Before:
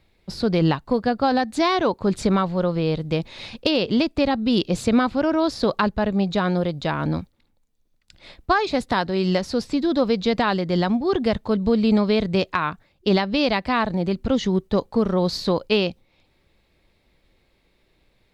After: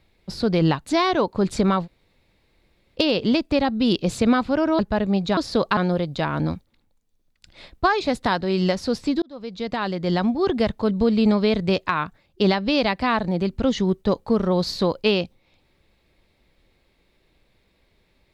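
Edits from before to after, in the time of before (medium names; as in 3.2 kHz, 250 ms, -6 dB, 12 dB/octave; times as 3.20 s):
0.86–1.52 s: delete
2.51–3.63 s: room tone, crossfade 0.06 s
5.45–5.85 s: move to 6.43 s
9.88–10.90 s: fade in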